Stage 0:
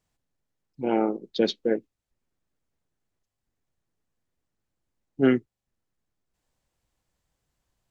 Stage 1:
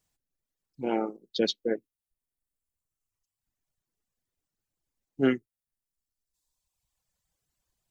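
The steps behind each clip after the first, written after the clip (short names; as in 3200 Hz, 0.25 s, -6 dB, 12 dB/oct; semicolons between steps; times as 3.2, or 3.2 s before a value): reverb removal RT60 1.6 s; high shelf 4200 Hz +10 dB; gain -3.5 dB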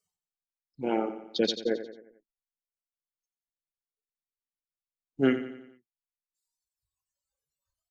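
spectral noise reduction 23 dB; feedback echo 89 ms, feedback 50%, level -11.5 dB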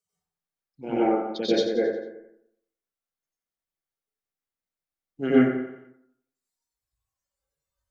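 plate-style reverb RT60 0.69 s, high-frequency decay 0.3×, pre-delay 80 ms, DRR -9.5 dB; gain -5.5 dB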